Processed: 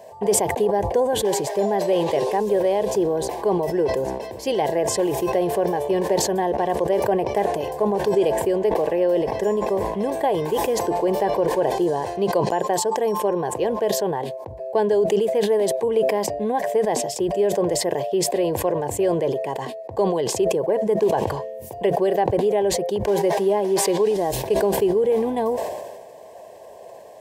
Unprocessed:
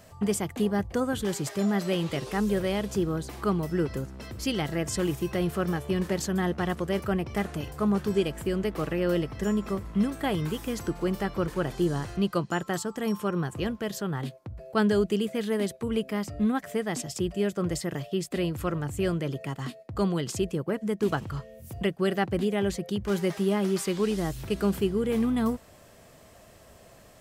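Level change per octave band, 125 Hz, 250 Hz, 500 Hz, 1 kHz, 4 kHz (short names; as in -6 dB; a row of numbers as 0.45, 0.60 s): -1.5, +1.0, +10.5, +11.5, +4.5 dB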